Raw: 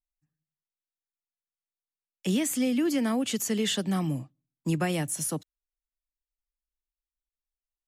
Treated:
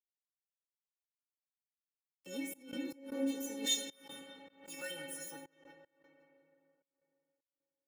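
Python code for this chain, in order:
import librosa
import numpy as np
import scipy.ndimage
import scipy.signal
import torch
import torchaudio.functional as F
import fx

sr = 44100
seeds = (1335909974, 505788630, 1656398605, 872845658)

y = fx.tilt_shelf(x, sr, db=fx.steps((0.0, 5.5), (3.65, -6.5), (4.9, 4.5)), hz=810.0)
y = fx.echo_bbd(y, sr, ms=172, stages=2048, feedback_pct=75, wet_db=-7)
y = np.sign(y) * np.maximum(np.abs(y) - 10.0 ** (-39.0 / 20.0), 0.0)
y = scipy.signal.sosfilt(scipy.signal.butter(2, 110.0, 'highpass', fs=sr, output='sos'), y)
y = fx.high_shelf(y, sr, hz=10000.0, db=11.0)
y = fx.stiff_resonator(y, sr, f0_hz=270.0, decay_s=0.49, stiffness=0.008)
y = fx.rev_freeverb(y, sr, rt60_s=3.3, hf_ratio=0.55, predelay_ms=5, drr_db=5.0)
y = fx.step_gate(y, sr, bpm=77, pattern='.xxxx.xx.xxxx.x', floor_db=-24.0, edge_ms=4.5)
y = y + 0.69 * np.pad(y, (int(2.2 * sr / 1000.0), 0))[:len(y)]
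y = fx.pre_swell(y, sr, db_per_s=120.0)
y = y * librosa.db_to_amplitude(1.0)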